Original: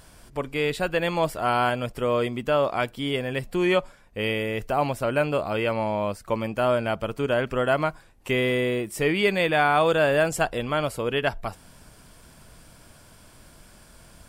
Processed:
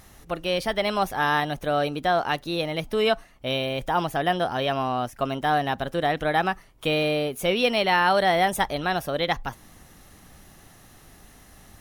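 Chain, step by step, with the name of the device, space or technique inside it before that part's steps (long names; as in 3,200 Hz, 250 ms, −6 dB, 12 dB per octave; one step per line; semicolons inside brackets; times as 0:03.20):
nightcore (speed change +21%)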